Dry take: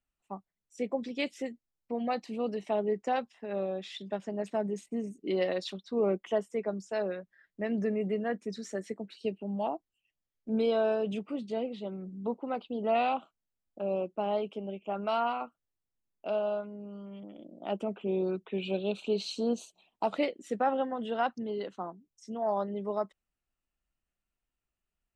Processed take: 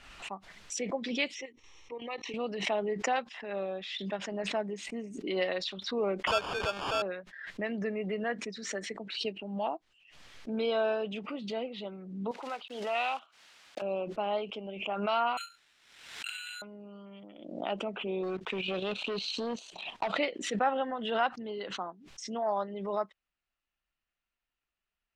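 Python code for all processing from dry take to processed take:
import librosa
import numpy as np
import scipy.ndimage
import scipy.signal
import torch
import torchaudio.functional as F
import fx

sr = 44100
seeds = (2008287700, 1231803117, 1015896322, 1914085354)

y = fx.chain(x, sr, fx.level_steps(step_db=11),
    fx.lowpass_res(hz=5600.0, q=13.0),
    fx.fixed_phaser(hz=1000.0, stages=8), at=(1.35, 2.34))
y = fx.chain(y, sr, fx.zero_step(step_db=-34.0),
    fx.highpass(hz=490.0, slope=12),
    fx.sample_hold(seeds[0], rate_hz=2000.0, jitter_pct=0), at=(6.27, 7.02))
y = fx.chain(y, sr, fx.block_float(bits=5),
    fx.highpass(hz=1000.0, slope=6), at=(12.31, 13.82))
y = fx.chain(y, sr, fx.brickwall_bandpass(low_hz=1300.0, high_hz=6000.0),
    fx.resample_bad(factor=8, down='none', up='zero_stuff'),
    fx.env_flatten(amount_pct=50), at=(15.37, 16.62))
y = fx.chain(y, sr, fx.leveller(passes=2),
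    fx.level_steps(step_db=10), at=(18.23, 20.08))
y = scipy.signal.sosfilt(scipy.signal.butter(2, 3700.0, 'lowpass', fs=sr, output='sos'), y)
y = fx.tilt_shelf(y, sr, db=-6.5, hz=780.0)
y = fx.pre_swell(y, sr, db_per_s=59.0)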